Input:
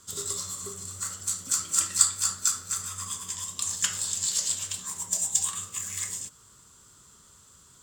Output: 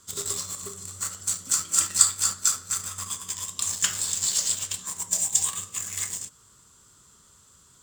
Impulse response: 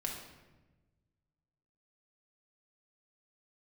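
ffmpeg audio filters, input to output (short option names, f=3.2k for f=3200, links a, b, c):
-filter_complex "[0:a]asplit=2[a][b];[b]acrusher=bits=4:mix=0:aa=0.000001,volume=-6dB[c];[a][c]amix=inputs=2:normalize=0,asettb=1/sr,asplit=3[d][e][f];[d]atrim=end=5.164[g];[e]atrim=start=5.16:end=5.74,asetpts=PTS-STARTPTS,afade=t=in:d=0.004:c=qsin,afade=t=out:st=0.576:d=0.004:c=qsin,bandreject=f=1.4k:w=7.3[h];[f]atrim=start=5.736[i];[g][h]acrossfade=d=0.004:c1=hsin:c2=qsin[j];[j][i]acrossfade=d=0.004:c1=qsin:c2=hsin,volume=-1dB"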